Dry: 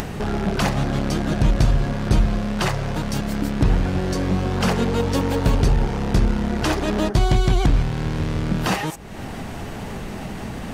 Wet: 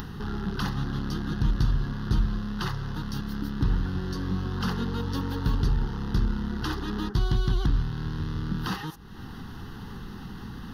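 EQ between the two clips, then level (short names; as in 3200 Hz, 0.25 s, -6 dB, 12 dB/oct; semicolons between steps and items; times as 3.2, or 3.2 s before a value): fixed phaser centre 2300 Hz, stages 6; -6.5 dB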